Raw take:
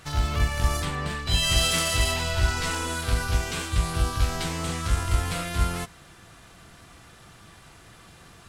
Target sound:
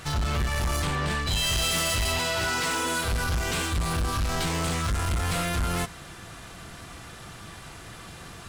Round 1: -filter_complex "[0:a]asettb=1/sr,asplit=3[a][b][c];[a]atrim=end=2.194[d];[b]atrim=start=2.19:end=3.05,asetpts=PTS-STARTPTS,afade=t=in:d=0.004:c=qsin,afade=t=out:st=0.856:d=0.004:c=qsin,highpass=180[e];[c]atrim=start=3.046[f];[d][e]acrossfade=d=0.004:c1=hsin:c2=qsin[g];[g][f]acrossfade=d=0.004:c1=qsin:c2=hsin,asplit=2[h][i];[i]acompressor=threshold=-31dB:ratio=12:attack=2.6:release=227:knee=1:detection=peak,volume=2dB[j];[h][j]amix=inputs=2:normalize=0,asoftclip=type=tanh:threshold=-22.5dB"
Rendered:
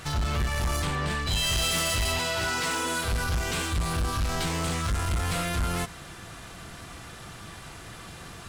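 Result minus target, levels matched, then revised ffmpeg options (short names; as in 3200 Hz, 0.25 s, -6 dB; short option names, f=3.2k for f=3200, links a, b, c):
compressor: peak gain reduction +5.5 dB
-filter_complex "[0:a]asettb=1/sr,asplit=3[a][b][c];[a]atrim=end=2.194[d];[b]atrim=start=2.19:end=3.05,asetpts=PTS-STARTPTS,afade=t=in:d=0.004:c=qsin,afade=t=out:st=0.856:d=0.004:c=qsin,highpass=180[e];[c]atrim=start=3.046[f];[d][e]acrossfade=d=0.004:c1=hsin:c2=qsin[g];[g][f]acrossfade=d=0.004:c1=qsin:c2=hsin,asplit=2[h][i];[i]acompressor=threshold=-25dB:ratio=12:attack=2.6:release=227:knee=1:detection=peak,volume=2dB[j];[h][j]amix=inputs=2:normalize=0,asoftclip=type=tanh:threshold=-22.5dB"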